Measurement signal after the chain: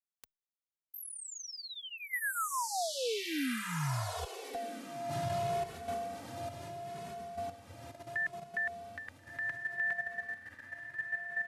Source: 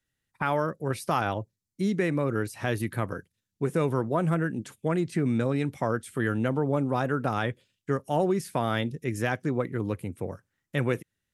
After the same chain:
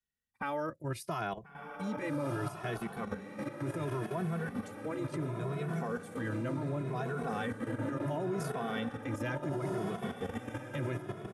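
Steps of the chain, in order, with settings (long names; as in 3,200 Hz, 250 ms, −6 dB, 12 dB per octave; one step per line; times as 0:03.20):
feedback delay with all-pass diffusion 1,402 ms, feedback 54%, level −4 dB
output level in coarse steps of 10 dB
barber-pole flanger 2.3 ms +0.7 Hz
level −2 dB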